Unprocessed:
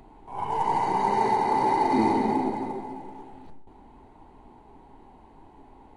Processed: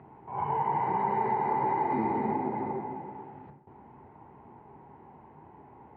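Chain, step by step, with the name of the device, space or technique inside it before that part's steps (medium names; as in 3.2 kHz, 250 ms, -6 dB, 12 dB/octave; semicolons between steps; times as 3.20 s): bass amplifier (compression 3:1, threshold -27 dBFS, peak gain reduction 7.5 dB; cabinet simulation 82–2200 Hz, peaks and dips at 140 Hz +6 dB, 280 Hz -7 dB, 680 Hz -3 dB); trim +1.5 dB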